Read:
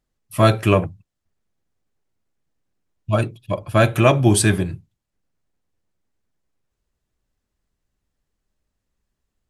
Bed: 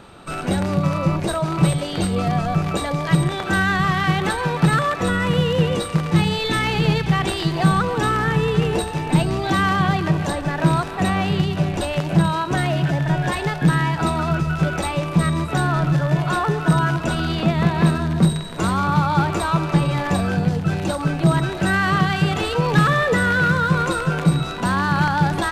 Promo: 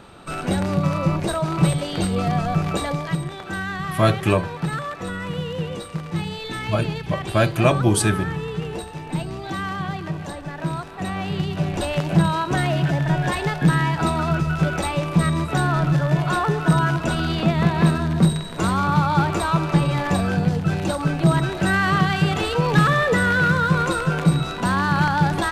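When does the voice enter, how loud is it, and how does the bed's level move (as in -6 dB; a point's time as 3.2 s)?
3.60 s, -3.0 dB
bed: 2.91 s -1 dB
3.21 s -9 dB
10.91 s -9 dB
11.88 s -0.5 dB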